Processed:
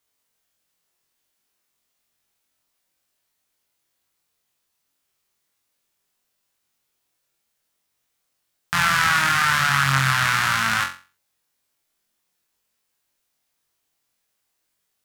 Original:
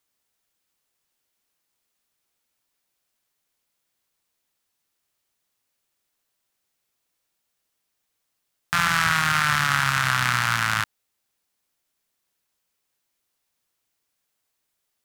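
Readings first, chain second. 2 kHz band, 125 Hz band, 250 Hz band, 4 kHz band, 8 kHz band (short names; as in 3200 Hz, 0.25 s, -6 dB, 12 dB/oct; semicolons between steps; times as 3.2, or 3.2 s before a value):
+2.5 dB, +2.5 dB, +1.5 dB, +2.5 dB, +2.5 dB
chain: flutter echo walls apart 3.8 m, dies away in 0.35 s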